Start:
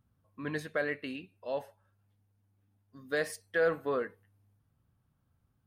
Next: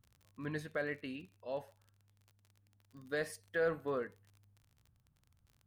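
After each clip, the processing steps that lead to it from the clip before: low shelf 130 Hz +11 dB; crackle 39/s -44 dBFS; gain -6 dB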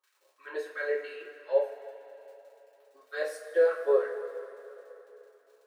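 resonant high-pass 400 Hz, resonance Q 4.9; LFO high-pass sine 3 Hz 540–1600 Hz; two-slope reverb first 0.3 s, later 3.5 s, from -18 dB, DRR -8 dB; gain -8 dB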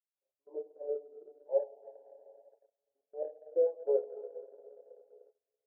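steep low-pass 830 Hz 72 dB/oct; gate -55 dBFS, range -18 dB; transient shaper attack +2 dB, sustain -5 dB; gain -6 dB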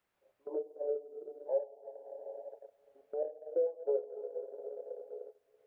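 three-band squash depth 70%; gain +1 dB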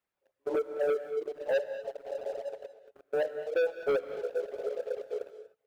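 reverb removal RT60 0.86 s; sample leveller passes 3; non-linear reverb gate 0.26 s rising, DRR 11 dB

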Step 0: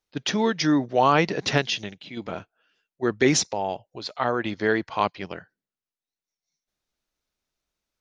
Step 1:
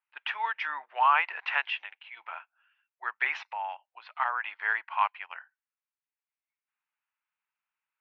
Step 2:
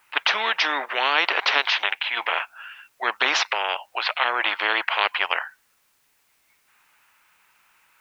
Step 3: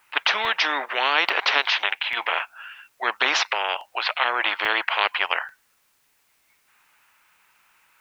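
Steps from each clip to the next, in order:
elliptic band-pass 890–2700 Hz, stop band 80 dB
spectral compressor 4:1; gain +8.5 dB
crackling interface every 0.84 s, samples 64, zero, from 0.45

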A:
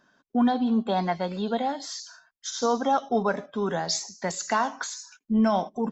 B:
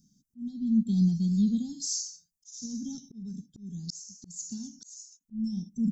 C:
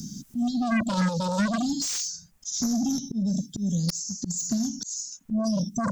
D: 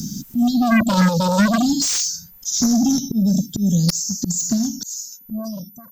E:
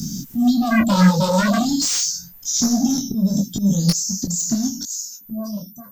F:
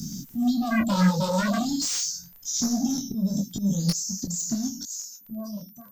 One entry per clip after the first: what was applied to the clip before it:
elliptic band-stop 200–6000 Hz, stop band 50 dB; auto swell 0.703 s; gain +9 dB
in parallel at -10 dB: sine folder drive 17 dB, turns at -16 dBFS; on the sum: three-band squash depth 70%
ending faded out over 1.75 s; whine 14000 Hz -53 dBFS; gain +9 dB
in parallel at -10 dB: soft clip -18.5 dBFS, distortion -10 dB; on the sum: detuned doubles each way 28 cents; gain +2.5 dB
crackle 13/s -32 dBFS; gain -7 dB

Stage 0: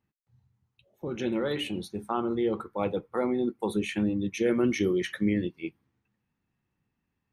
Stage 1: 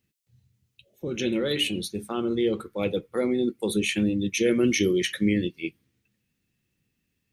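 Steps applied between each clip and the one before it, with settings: EQ curve 520 Hz 0 dB, 890 Hz -12 dB, 2600 Hz +6 dB, 7200 Hz +9 dB; gain +3 dB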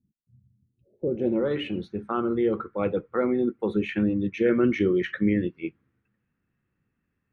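low-pass sweep 220 Hz -> 1400 Hz, 0.58–1.62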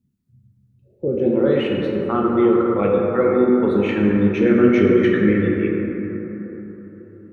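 plate-style reverb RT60 4.2 s, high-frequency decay 0.3×, DRR -2 dB; gain +4 dB

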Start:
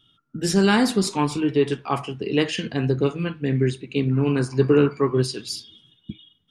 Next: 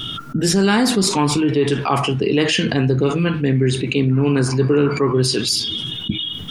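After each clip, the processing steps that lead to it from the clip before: fast leveller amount 70%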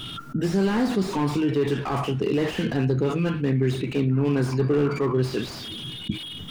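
slew limiter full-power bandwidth 110 Hz; gain -5.5 dB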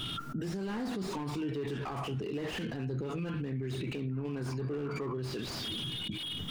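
in parallel at +2.5 dB: compressor, threshold -31 dBFS, peak gain reduction 13 dB; on the sum: limiter -20 dBFS, peak gain reduction 11 dB; gain -8.5 dB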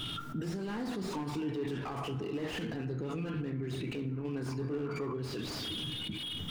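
FDN reverb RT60 2.4 s, high-frequency decay 0.3×, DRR 10.5 dB; gain -1 dB

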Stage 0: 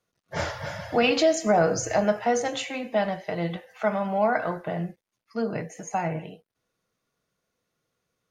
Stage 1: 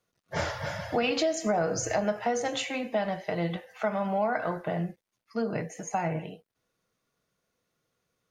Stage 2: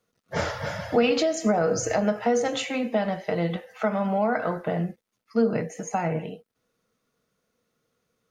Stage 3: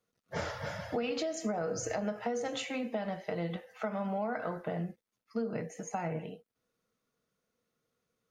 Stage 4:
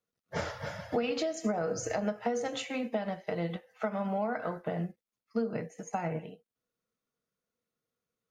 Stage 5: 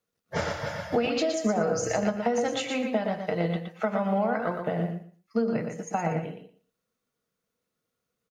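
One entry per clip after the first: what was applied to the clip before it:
compressor 3:1, threshold -25 dBFS, peak gain reduction 7.5 dB
small resonant body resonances 230/460/1300 Hz, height 7 dB; gain +2 dB
compressor 4:1, threshold -23 dBFS, peak gain reduction 7 dB; gain -7.5 dB
upward expander 1.5:1, over -52 dBFS; gain +4 dB
feedback echo 0.118 s, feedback 18%, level -6 dB; gain +5 dB

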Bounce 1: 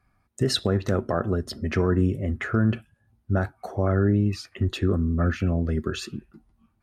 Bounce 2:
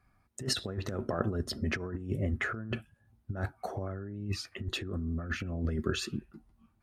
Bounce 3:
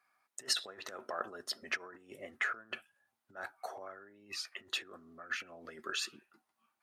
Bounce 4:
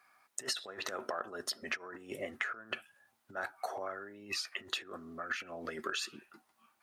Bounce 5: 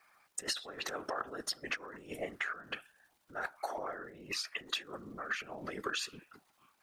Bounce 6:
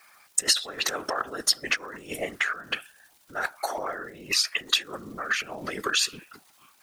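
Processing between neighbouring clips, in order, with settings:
negative-ratio compressor -26 dBFS, ratio -0.5; gain -6 dB
HPF 820 Hz 12 dB/oct
compressor 8:1, threshold -43 dBFS, peak gain reduction 16 dB; gain +9 dB
crackle 180/s -58 dBFS; whisperiser
high shelf 2600 Hz +10 dB; gain +7 dB

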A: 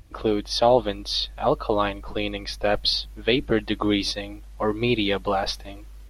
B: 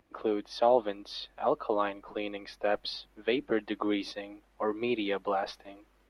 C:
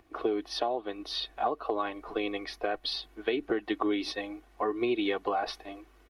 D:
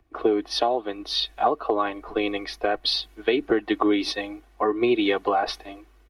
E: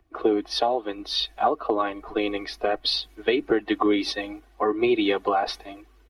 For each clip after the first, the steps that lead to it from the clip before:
three-band isolator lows -21 dB, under 210 Hz, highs -12 dB, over 2600 Hz; gain -6 dB
compressor 12:1, threshold -31 dBFS, peak gain reduction 13.5 dB; comb 2.7 ms, depth 53%; gain +4.5 dB
three-band expander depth 40%; gain +7.5 dB
bin magnitudes rounded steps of 15 dB

